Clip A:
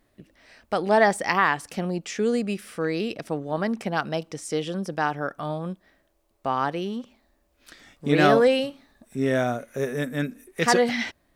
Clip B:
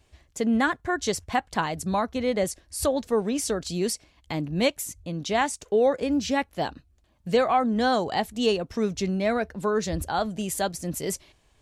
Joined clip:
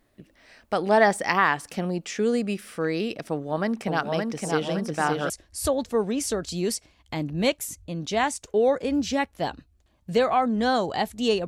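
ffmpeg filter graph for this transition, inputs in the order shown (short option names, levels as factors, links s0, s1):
-filter_complex "[0:a]asettb=1/sr,asplit=3[s0][s1][s2];[s0]atrim=end=3.314[s3];[s1]atrim=start=3.31:end=5.3,asetpts=PTS-STARTPTS,afade=t=in:d=0.004:c=qsin,afade=t=out:st=1.986:d=0.004:c=qsin,aecho=1:1:567|1134|1701|2268|2835|3402:0.668|0.314|0.148|0.0694|0.0326|0.0153,atrim=end_sample=87759[s4];[s2]atrim=start=5.296[s5];[s3][s4]acrossfade=d=0.004:c1=hsin:c2=qsin[s6];[s6][s5]acrossfade=d=0.004:c1=qsin:c2=hsin,apad=whole_dur=11.47,atrim=end=11.47,atrim=end=5.302[s7];[1:a]atrim=start=2.478:end=8.65[s8];[s7][s8]acrossfade=d=0.004:c1=hsin:c2=hsin"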